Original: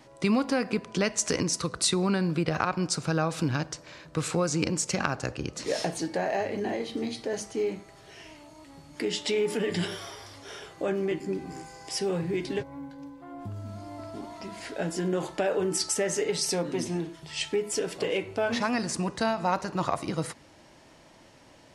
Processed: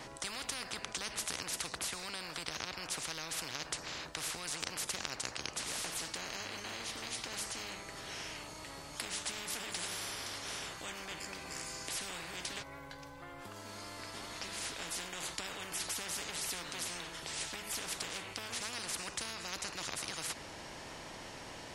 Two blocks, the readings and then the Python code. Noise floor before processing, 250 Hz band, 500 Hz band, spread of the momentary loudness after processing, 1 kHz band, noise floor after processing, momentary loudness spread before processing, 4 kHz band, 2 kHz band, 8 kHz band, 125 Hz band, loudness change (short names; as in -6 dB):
-55 dBFS, -21.0 dB, -19.5 dB, 9 LU, -11.0 dB, -49 dBFS, 14 LU, -3.5 dB, -6.0 dB, -5.0 dB, -19.5 dB, -10.5 dB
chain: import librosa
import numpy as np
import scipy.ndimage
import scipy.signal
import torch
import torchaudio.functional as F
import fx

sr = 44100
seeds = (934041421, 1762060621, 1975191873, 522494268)

y = fx.spectral_comp(x, sr, ratio=10.0)
y = F.gain(torch.from_numpy(y), -6.5).numpy()